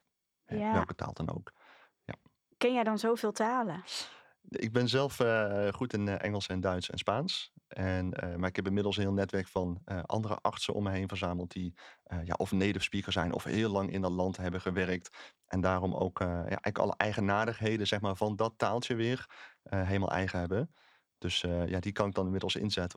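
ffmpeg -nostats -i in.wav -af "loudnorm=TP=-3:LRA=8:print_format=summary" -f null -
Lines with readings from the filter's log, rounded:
Input Integrated:    -33.2 LUFS
Input True Peak:      -7.7 dBTP
Input LRA:             2.3 LU
Input Threshold:     -43.7 LUFS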